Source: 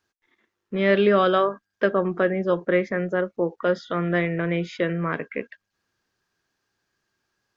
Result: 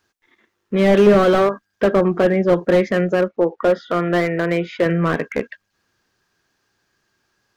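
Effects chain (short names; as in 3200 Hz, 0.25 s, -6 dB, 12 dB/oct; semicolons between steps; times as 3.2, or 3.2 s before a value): 3.28–4.86 tone controls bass -8 dB, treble -14 dB; slew limiter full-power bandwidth 69 Hz; gain +8 dB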